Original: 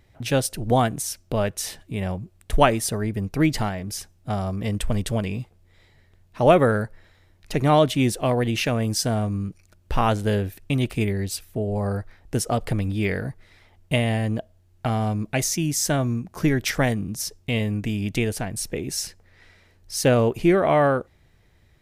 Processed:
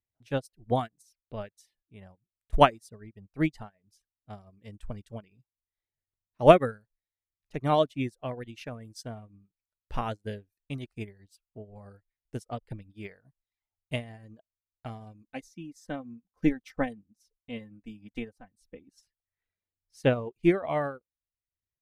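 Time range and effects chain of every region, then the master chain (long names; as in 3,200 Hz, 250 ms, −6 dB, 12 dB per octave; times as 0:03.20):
0:15.24–0:19.03: high-shelf EQ 2,100 Hz −6 dB + comb filter 3.9 ms, depth 68%
whole clip: reverb reduction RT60 0.8 s; high-shelf EQ 12,000 Hz −10.5 dB; expander for the loud parts 2.5 to 1, over −37 dBFS; level +2 dB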